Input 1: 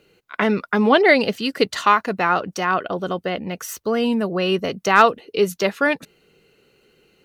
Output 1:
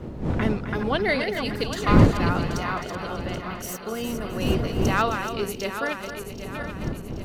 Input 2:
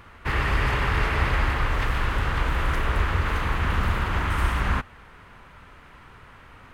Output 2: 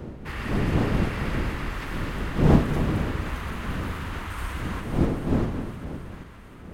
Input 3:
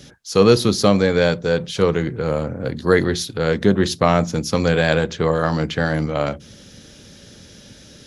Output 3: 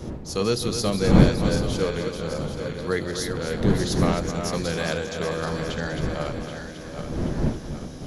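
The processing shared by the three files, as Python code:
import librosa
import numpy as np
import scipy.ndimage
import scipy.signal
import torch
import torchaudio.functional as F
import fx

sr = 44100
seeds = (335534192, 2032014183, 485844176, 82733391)

p1 = fx.reverse_delay_fb(x, sr, ms=390, feedback_pct=68, wet_db=-7)
p2 = fx.dmg_wind(p1, sr, seeds[0], corner_hz=250.0, level_db=-16.0)
p3 = fx.high_shelf(p2, sr, hz=4500.0, db=9.5)
p4 = p3 + fx.echo_single(p3, sr, ms=262, db=-10.0, dry=0)
y = p4 * 10.0 ** (-11.0 / 20.0)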